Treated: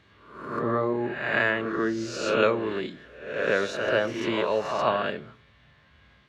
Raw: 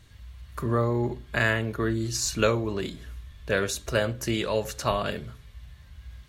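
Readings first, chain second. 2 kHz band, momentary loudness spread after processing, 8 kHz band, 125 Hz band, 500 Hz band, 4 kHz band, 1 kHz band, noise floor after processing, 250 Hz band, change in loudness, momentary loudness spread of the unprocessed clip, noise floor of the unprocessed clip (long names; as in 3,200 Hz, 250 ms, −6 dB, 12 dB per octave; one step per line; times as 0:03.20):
+2.5 dB, 12 LU, −12.0 dB, −9.5 dB, +2.5 dB, −2.0 dB, +3.5 dB, −59 dBFS, 0.0 dB, +1.0 dB, 18 LU, −51 dBFS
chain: peak hold with a rise ahead of every peak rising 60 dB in 0.71 s
band-pass filter 220–2,800 Hz
on a send: backwards echo 137 ms −7.5 dB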